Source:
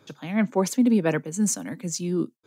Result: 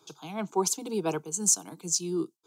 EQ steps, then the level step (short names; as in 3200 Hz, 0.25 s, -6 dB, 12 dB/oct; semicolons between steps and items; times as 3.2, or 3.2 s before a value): tone controls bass -11 dB, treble 0 dB; bell 6500 Hz +5.5 dB 1.5 oct; fixed phaser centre 370 Hz, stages 8; 0.0 dB